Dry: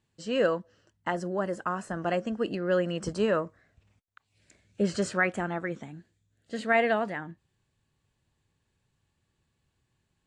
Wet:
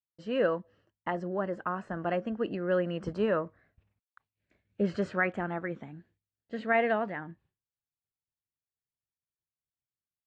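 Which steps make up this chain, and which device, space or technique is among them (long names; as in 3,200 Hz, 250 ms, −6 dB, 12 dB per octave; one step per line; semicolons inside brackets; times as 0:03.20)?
hearing-loss simulation (low-pass filter 2,600 Hz 12 dB per octave; downward expander −58 dBFS)
0:00.56–0:01.26: notch filter 1,500 Hz, Q 7.9
level −2 dB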